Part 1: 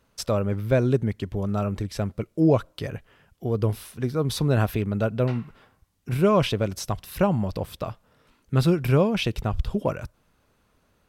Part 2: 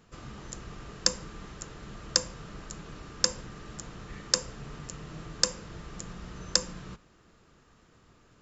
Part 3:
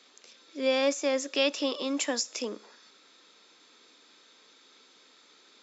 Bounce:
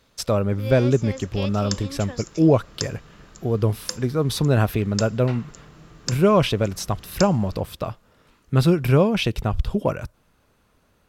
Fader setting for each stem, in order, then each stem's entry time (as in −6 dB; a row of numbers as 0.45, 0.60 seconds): +3.0, −4.5, −7.5 decibels; 0.00, 0.65, 0.00 seconds